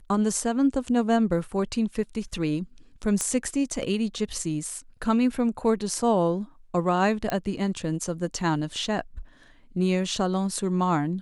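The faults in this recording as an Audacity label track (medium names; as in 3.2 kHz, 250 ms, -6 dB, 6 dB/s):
3.210000	3.210000	pop -13 dBFS
7.300000	7.300000	pop -13 dBFS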